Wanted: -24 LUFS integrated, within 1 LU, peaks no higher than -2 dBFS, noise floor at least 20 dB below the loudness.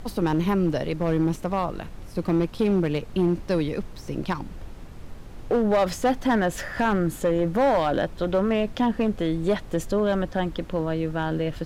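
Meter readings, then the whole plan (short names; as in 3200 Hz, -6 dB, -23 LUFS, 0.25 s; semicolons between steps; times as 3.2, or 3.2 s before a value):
clipped 1.8%; flat tops at -15.5 dBFS; noise floor -40 dBFS; noise floor target -45 dBFS; loudness -25.0 LUFS; peak -15.5 dBFS; loudness target -24.0 LUFS
-> clip repair -15.5 dBFS; noise print and reduce 6 dB; gain +1 dB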